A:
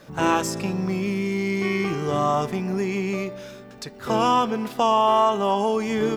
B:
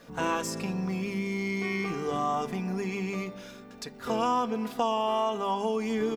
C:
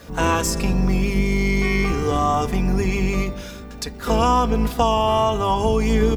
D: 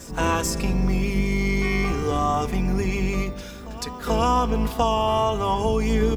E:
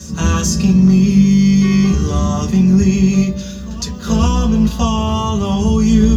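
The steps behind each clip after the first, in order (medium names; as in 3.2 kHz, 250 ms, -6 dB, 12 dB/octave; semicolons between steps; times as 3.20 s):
hum notches 50/100/150/200 Hz; comb 4.2 ms, depth 45%; compression 1.5:1, threshold -26 dBFS, peak gain reduction 5 dB; trim -4.5 dB
octave divider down 2 oct, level +3 dB; treble shelf 6.2 kHz +6 dB; trim +8.5 dB
reverse echo 435 ms -17.5 dB; trim -3 dB
reverberation RT60 0.15 s, pre-delay 3 ms, DRR 1 dB; trim +1.5 dB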